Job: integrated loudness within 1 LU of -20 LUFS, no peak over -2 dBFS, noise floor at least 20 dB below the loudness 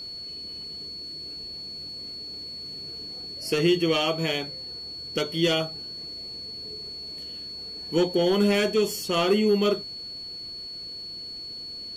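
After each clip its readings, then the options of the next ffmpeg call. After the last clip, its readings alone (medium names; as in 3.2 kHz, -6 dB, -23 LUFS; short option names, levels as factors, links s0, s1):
steady tone 4.4 kHz; tone level -35 dBFS; loudness -27.5 LUFS; peak level -11.5 dBFS; loudness target -20.0 LUFS
-> -af "bandreject=f=4400:w=30"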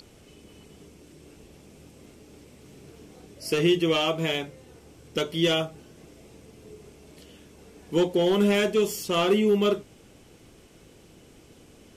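steady tone not found; loudness -24.5 LUFS; peak level -12.0 dBFS; loudness target -20.0 LUFS
-> -af "volume=1.68"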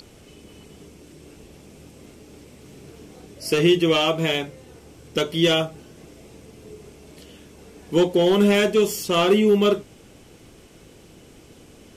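loudness -20.0 LUFS; peak level -7.5 dBFS; noise floor -49 dBFS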